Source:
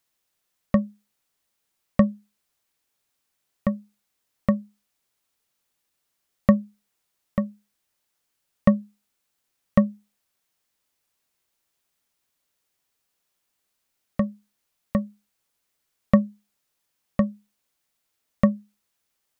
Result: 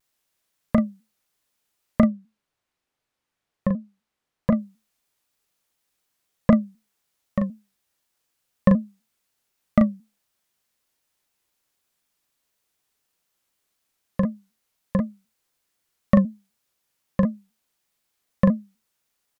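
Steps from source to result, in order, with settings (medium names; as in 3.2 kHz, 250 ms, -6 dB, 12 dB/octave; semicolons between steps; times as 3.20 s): 2.07–4.57 s: low-pass 2.3 kHz 6 dB/octave; doubling 38 ms -5.5 dB; vibrato with a chosen wave saw down 4 Hz, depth 160 cents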